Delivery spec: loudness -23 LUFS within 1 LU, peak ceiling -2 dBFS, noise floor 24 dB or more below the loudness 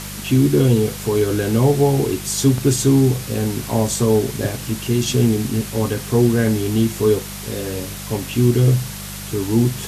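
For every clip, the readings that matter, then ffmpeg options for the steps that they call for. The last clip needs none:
hum 50 Hz; harmonics up to 200 Hz; hum level -31 dBFS; noise floor -31 dBFS; noise floor target -43 dBFS; loudness -18.5 LUFS; peak -3.5 dBFS; loudness target -23.0 LUFS
-> -af "bandreject=f=50:t=h:w=4,bandreject=f=100:t=h:w=4,bandreject=f=150:t=h:w=4,bandreject=f=200:t=h:w=4"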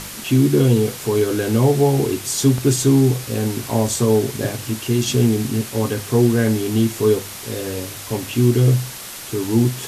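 hum none; noise floor -33 dBFS; noise floor target -43 dBFS
-> -af "afftdn=nr=10:nf=-33"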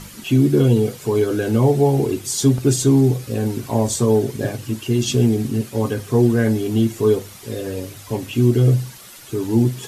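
noise floor -40 dBFS; noise floor target -43 dBFS
-> -af "afftdn=nr=6:nf=-40"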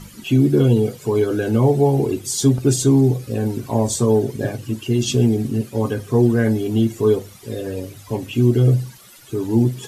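noise floor -43 dBFS; loudness -18.5 LUFS; peak -4.5 dBFS; loudness target -23.0 LUFS
-> -af "volume=-4.5dB"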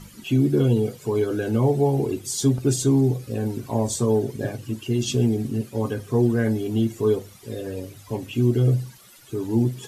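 loudness -23.0 LUFS; peak -9.0 dBFS; noise floor -48 dBFS

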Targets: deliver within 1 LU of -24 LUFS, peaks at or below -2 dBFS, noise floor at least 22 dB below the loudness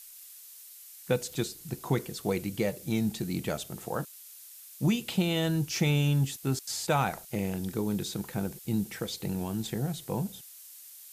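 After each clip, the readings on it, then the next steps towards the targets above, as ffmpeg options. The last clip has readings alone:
noise floor -50 dBFS; noise floor target -53 dBFS; loudness -31.0 LUFS; peak -15.0 dBFS; loudness target -24.0 LUFS
-> -af "afftdn=nr=6:nf=-50"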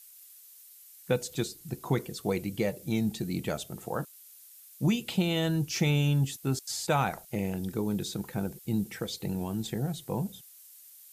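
noise floor -53 dBFS; loudness -31.0 LUFS; peak -15.5 dBFS; loudness target -24.0 LUFS
-> -af "volume=7dB"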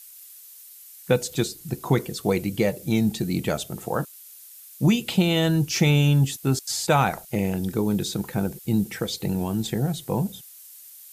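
loudness -24.0 LUFS; peak -8.5 dBFS; noise floor -46 dBFS

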